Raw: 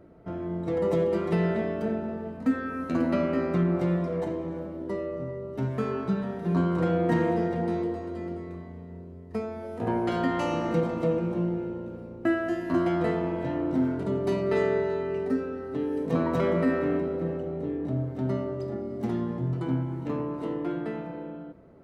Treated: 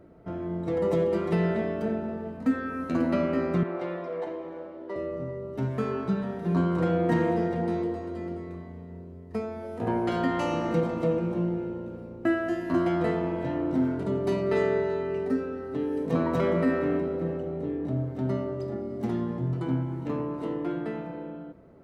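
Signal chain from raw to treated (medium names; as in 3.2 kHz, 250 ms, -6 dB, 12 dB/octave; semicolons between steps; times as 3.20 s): 3.63–4.96 s: three-band isolator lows -19 dB, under 350 Hz, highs -16 dB, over 4.7 kHz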